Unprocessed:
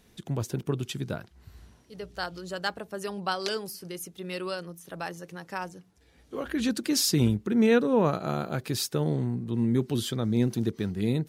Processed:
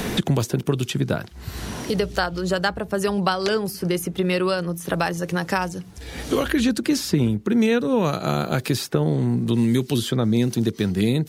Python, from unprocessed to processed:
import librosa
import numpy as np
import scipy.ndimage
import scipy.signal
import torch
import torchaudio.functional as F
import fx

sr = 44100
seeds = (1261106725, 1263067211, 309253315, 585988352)

y = fx.band_squash(x, sr, depth_pct=100)
y = y * librosa.db_to_amplitude(6.5)